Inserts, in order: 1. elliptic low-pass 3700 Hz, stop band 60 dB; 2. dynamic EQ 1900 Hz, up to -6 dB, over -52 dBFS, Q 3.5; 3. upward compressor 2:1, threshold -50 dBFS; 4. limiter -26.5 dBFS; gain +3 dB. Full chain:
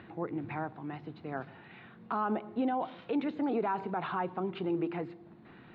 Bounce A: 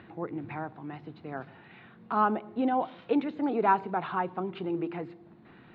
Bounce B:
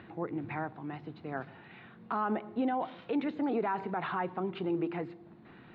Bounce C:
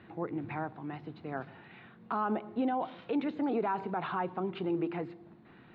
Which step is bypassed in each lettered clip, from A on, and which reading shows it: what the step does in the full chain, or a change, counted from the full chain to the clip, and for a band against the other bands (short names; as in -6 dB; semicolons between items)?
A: 4, crest factor change +7.5 dB; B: 2, 2 kHz band +1.5 dB; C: 3, momentary loudness spread change -7 LU